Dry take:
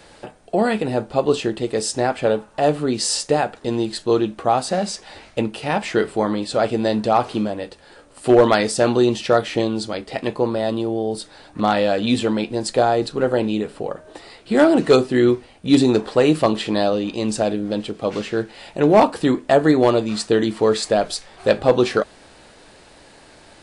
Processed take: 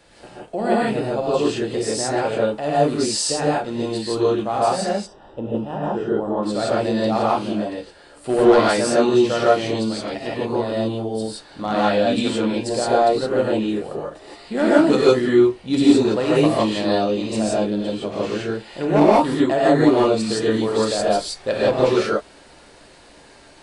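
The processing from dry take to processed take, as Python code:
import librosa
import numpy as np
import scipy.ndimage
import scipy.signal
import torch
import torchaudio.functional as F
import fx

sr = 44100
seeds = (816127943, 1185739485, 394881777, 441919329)

y = fx.moving_average(x, sr, points=20, at=(4.88, 6.42), fade=0.02)
y = fx.rev_gated(y, sr, seeds[0], gate_ms=190, shape='rising', drr_db=-7.0)
y = F.gain(torch.from_numpy(y), -8.0).numpy()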